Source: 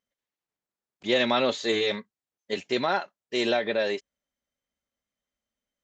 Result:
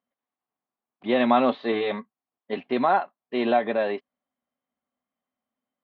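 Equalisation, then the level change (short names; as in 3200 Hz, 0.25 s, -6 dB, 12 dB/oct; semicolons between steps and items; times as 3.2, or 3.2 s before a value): air absorption 280 m; speaker cabinet 120–4000 Hz, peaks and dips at 250 Hz +9 dB, 740 Hz +10 dB, 1100 Hz +9 dB; 0.0 dB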